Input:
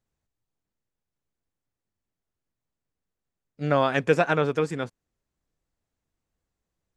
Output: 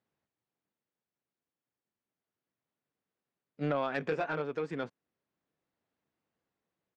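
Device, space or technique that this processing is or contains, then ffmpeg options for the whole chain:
AM radio: -filter_complex "[0:a]asplit=3[a][b][c];[a]afade=t=out:st=4:d=0.02[d];[b]asplit=2[e][f];[f]adelay=20,volume=-2.5dB[g];[e][g]amix=inputs=2:normalize=0,afade=t=in:st=4:d=0.02,afade=t=out:st=4.41:d=0.02[h];[c]afade=t=in:st=4.41:d=0.02[i];[d][h][i]amix=inputs=3:normalize=0,highpass=180,lowpass=3.4k,acompressor=threshold=-26dB:ratio=5,asoftclip=type=tanh:threshold=-21dB,tremolo=f=0.33:d=0.38,volume=1.5dB"

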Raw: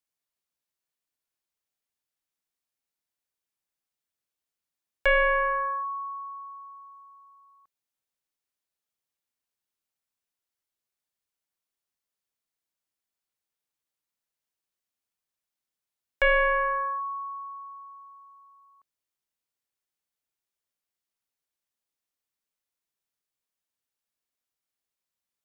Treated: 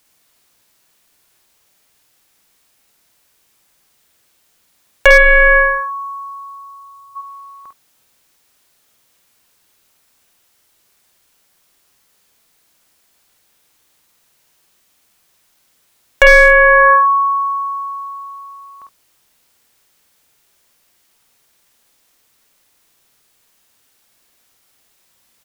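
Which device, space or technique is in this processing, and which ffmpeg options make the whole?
loud club master: -filter_complex "[0:a]asplit=3[a][b][c];[a]afade=t=out:st=5.17:d=0.02[d];[b]equalizer=f=125:t=o:w=1:g=11,equalizer=f=250:t=o:w=1:g=-9,equalizer=f=500:t=o:w=1:g=-6,equalizer=f=1k:t=o:w=1:g=-11,equalizer=f=2k:t=o:w=1:g=-4,afade=t=in:st=5.17:d=0.02,afade=t=out:st=7.15:d=0.02[e];[c]afade=t=in:st=7.15:d=0.02[f];[d][e][f]amix=inputs=3:normalize=0,aecho=1:1:50|71:0.596|0.168,acompressor=threshold=-30dB:ratio=1.5,asoftclip=type=hard:threshold=-20.5dB,alimiter=level_in=29dB:limit=-1dB:release=50:level=0:latency=1,volume=-1dB"

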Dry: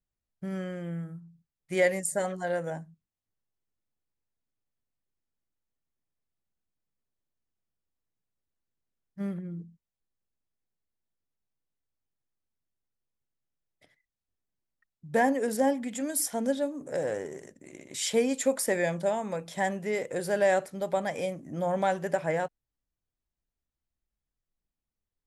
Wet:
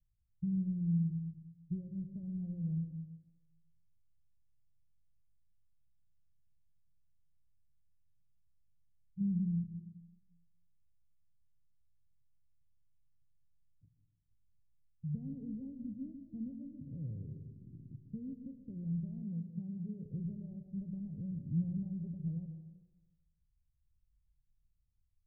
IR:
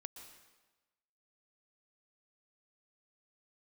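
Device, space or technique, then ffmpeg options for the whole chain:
club heard from the street: -filter_complex "[0:a]alimiter=limit=-23.5dB:level=0:latency=1:release=194,lowpass=f=140:w=0.5412,lowpass=f=140:w=1.3066[a];[1:a]atrim=start_sample=2205[b];[a][b]afir=irnorm=-1:irlink=0,asettb=1/sr,asplit=3[c][d][e];[c]atrim=end=19.224[f];[d]atrim=start=19.22:end=20.06,asetpts=PTS-STARTPTS,afade=t=in:d=0.004:c=qsin,afade=t=out:st=0.836:d=0.004:c=qsin,highpass=150[g];[e]atrim=start=20.056[h];[f][g]acrossfade=d=0.004:c1=hsin:c2=qsin[i];[i][h]acrossfade=d=0.004:c1=qsin:c2=hsin,volume=17.5dB"

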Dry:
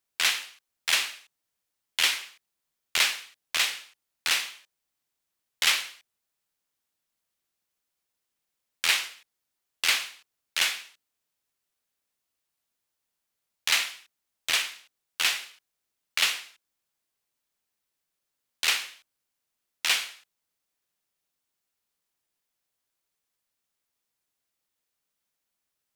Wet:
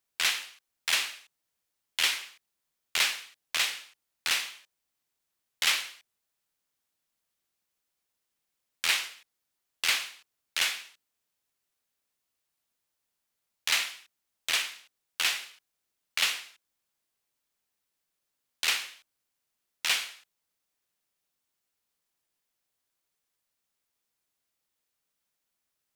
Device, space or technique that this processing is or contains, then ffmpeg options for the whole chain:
clipper into limiter: -af "asoftclip=type=hard:threshold=-13dB,alimiter=limit=-15.5dB:level=0:latency=1:release=360"

